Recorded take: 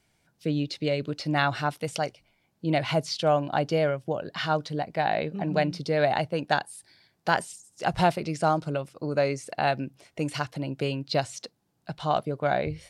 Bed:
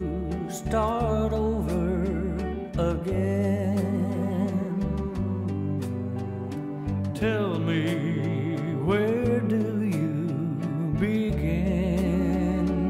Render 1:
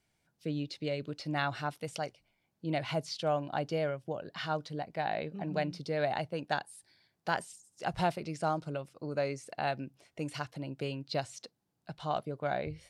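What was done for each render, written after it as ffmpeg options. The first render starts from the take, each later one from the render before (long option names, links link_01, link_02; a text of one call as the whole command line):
ffmpeg -i in.wav -af "volume=-8dB" out.wav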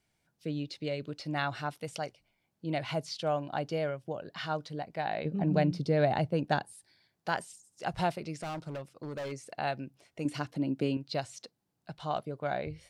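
ffmpeg -i in.wav -filter_complex "[0:a]asettb=1/sr,asplit=3[link_01][link_02][link_03];[link_01]atrim=end=5.254[link_04];[link_02]atrim=start=5.25:end=6.73,asetpts=PTS-STARTPTS,afade=type=in:duration=0.004:curve=qsin,afade=type=out:start_time=1.476:duration=0.004:curve=qsin,lowshelf=frequency=480:gain=11[link_05];[link_03]atrim=start=6.726[link_06];[link_04][link_05]acrossfade=duration=0.004:curve1=hsin:curve2=qsin[link_07];[link_07][link_06]acrossfade=duration=0.004:curve1=qsin:curve2=hsin,asplit=3[link_08][link_09][link_10];[link_08]afade=type=out:start_time=8.37:duration=0.02[link_11];[link_09]asoftclip=type=hard:threshold=-35dB,afade=type=in:start_time=8.37:duration=0.02,afade=type=out:start_time=9.31:duration=0.02[link_12];[link_10]afade=type=in:start_time=9.31:duration=0.02[link_13];[link_11][link_12][link_13]amix=inputs=3:normalize=0,asettb=1/sr,asplit=3[link_14][link_15][link_16];[link_14]atrim=end=10.254[link_17];[link_15]atrim=start=10.25:end=10.97,asetpts=PTS-STARTPTS,afade=type=in:duration=0.004:curve=qsin,afade=type=out:start_time=0.716:duration=0.004:curve=qsin,equalizer=frequency=260:width_type=o:width=1.1:gain=12[link_18];[link_16]atrim=start=10.966[link_19];[link_17][link_18]acrossfade=duration=0.004:curve1=hsin:curve2=qsin[link_20];[link_20][link_19]acrossfade=duration=0.004:curve1=qsin:curve2=hsin" out.wav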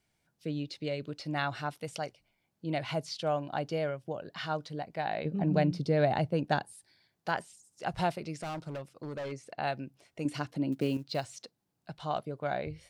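ffmpeg -i in.wav -filter_complex "[0:a]asettb=1/sr,asplit=3[link_01][link_02][link_03];[link_01]atrim=end=7.314[link_04];[link_02]atrim=start=7.31:end=7.9,asetpts=PTS-STARTPTS,afade=type=in:duration=0.004:curve=qsin,afade=type=out:start_time=0.586:duration=0.004:curve=qsin,acrossover=split=3900[link_05][link_06];[link_06]acompressor=threshold=-52dB:ratio=4:attack=1:release=60[link_07];[link_05][link_07]amix=inputs=2:normalize=0[link_08];[link_03]atrim=start=7.896[link_09];[link_04][link_08]acrossfade=duration=0.004:curve1=hsin:curve2=qsin[link_10];[link_10][link_09]acrossfade=duration=0.004:curve1=qsin:curve2=hsin,asettb=1/sr,asplit=3[link_11][link_12][link_13];[link_11]atrim=end=9.164[link_14];[link_12]atrim=start=9.16:end=9.64,asetpts=PTS-STARTPTS,afade=type=in:duration=0.004:curve=qsin,afade=type=out:start_time=0.476:duration=0.004:curve=qsin,highshelf=frequency=6900:gain=-10[link_15];[link_13]atrim=start=9.636[link_16];[link_14][link_15]acrossfade=duration=0.004:curve1=hsin:curve2=qsin[link_17];[link_17][link_16]acrossfade=duration=0.004:curve1=qsin:curve2=hsin,asettb=1/sr,asplit=3[link_18][link_19][link_20];[link_18]atrim=end=10.724[link_21];[link_19]atrim=start=10.72:end=11.37,asetpts=PTS-STARTPTS,afade=type=in:duration=0.004:curve=qsin,afade=type=out:start_time=0.646:duration=0.004:curve=qsin,acrusher=bits=7:mode=log:mix=0:aa=0.000001[link_22];[link_20]atrim=start=11.366[link_23];[link_21][link_22]acrossfade=duration=0.004:curve1=hsin:curve2=qsin[link_24];[link_24][link_23]acrossfade=duration=0.004:curve1=qsin:curve2=hsin" out.wav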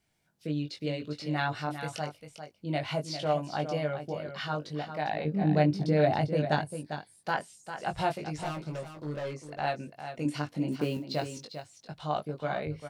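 ffmpeg -i in.wav -filter_complex "[0:a]asplit=2[link_01][link_02];[link_02]adelay=20,volume=-4dB[link_03];[link_01][link_03]amix=inputs=2:normalize=0,asplit=2[link_04][link_05];[link_05]aecho=0:1:399:0.335[link_06];[link_04][link_06]amix=inputs=2:normalize=0" out.wav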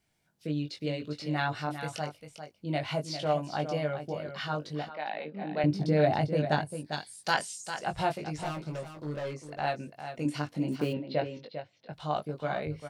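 ffmpeg -i in.wav -filter_complex "[0:a]asettb=1/sr,asplit=3[link_01][link_02][link_03];[link_01]atrim=end=4.894[link_04];[link_02]atrim=start=4.89:end=5.64,asetpts=PTS-STARTPTS,afade=type=in:duration=0.004:curve=qsin,afade=type=out:start_time=0.746:duration=0.004:curve=qsin,highpass=frequency=260:width=0.5412,highpass=frequency=260:width=1.3066,equalizer=frequency=310:width_type=q:width=4:gain=-8,equalizer=frequency=430:width_type=q:width=4:gain=-7,equalizer=frequency=700:width_type=q:width=4:gain=-5,equalizer=frequency=1100:width_type=q:width=4:gain=-3,equalizer=frequency=1700:width_type=q:width=4:gain=-3,lowpass=frequency=3900:width=0.5412,lowpass=frequency=3900:width=1.3066[link_05];[link_03]atrim=start=5.636[link_06];[link_04][link_05]acrossfade=duration=0.004:curve1=hsin:curve2=qsin[link_07];[link_07][link_06]acrossfade=duration=0.004:curve1=qsin:curve2=hsin,asplit=3[link_08][link_09][link_10];[link_08]afade=type=out:start_time=6.92:duration=0.02[link_11];[link_09]equalizer=frequency=6300:width=0.42:gain=14.5,afade=type=in:start_time=6.92:duration=0.02,afade=type=out:start_time=7.78:duration=0.02[link_12];[link_10]afade=type=in:start_time=7.78:duration=0.02[link_13];[link_11][link_12][link_13]amix=inputs=3:normalize=0,asplit=3[link_14][link_15][link_16];[link_14]afade=type=out:start_time=10.92:duration=0.02[link_17];[link_15]highpass=100,equalizer=frequency=530:width_type=q:width=4:gain=7,equalizer=frequency=1200:width_type=q:width=4:gain=-5,equalizer=frequency=2000:width_type=q:width=4:gain=3,lowpass=frequency=3500:width=0.5412,lowpass=frequency=3500:width=1.3066,afade=type=in:start_time=10.92:duration=0.02,afade=type=out:start_time=11.92:duration=0.02[link_18];[link_16]afade=type=in:start_time=11.92:duration=0.02[link_19];[link_17][link_18][link_19]amix=inputs=3:normalize=0" out.wav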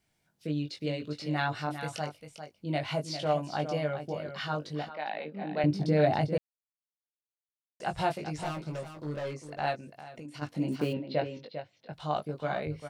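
ffmpeg -i in.wav -filter_complex "[0:a]asplit=3[link_01][link_02][link_03];[link_01]afade=type=out:start_time=9.75:duration=0.02[link_04];[link_02]acompressor=threshold=-41dB:ratio=6:attack=3.2:release=140:knee=1:detection=peak,afade=type=in:start_time=9.75:duration=0.02,afade=type=out:start_time=10.41:duration=0.02[link_05];[link_03]afade=type=in:start_time=10.41:duration=0.02[link_06];[link_04][link_05][link_06]amix=inputs=3:normalize=0,asplit=3[link_07][link_08][link_09];[link_07]atrim=end=6.38,asetpts=PTS-STARTPTS,afade=type=out:start_time=6.376:duration=0.004:curve=hsin[link_10];[link_08]atrim=start=6.38:end=7.8,asetpts=PTS-STARTPTS,volume=0[link_11];[link_09]atrim=start=7.8,asetpts=PTS-STARTPTS,afade=type=in:duration=0.004:curve=hsin[link_12];[link_10][link_11][link_12]concat=n=3:v=0:a=1" out.wav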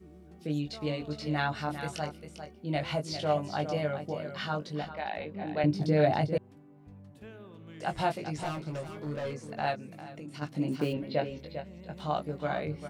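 ffmpeg -i in.wav -i bed.wav -filter_complex "[1:a]volume=-23dB[link_01];[0:a][link_01]amix=inputs=2:normalize=0" out.wav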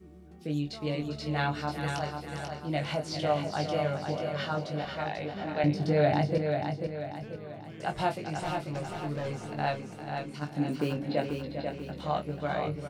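ffmpeg -i in.wav -filter_complex "[0:a]asplit=2[link_01][link_02];[link_02]adelay=28,volume=-13dB[link_03];[link_01][link_03]amix=inputs=2:normalize=0,asplit=2[link_04][link_05];[link_05]aecho=0:1:490|980|1470|1960|2450:0.531|0.234|0.103|0.0452|0.0199[link_06];[link_04][link_06]amix=inputs=2:normalize=0" out.wav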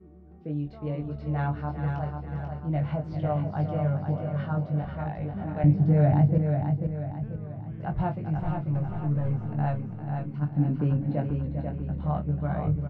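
ffmpeg -i in.wav -af "lowpass=1200,asubboost=boost=7:cutoff=150" out.wav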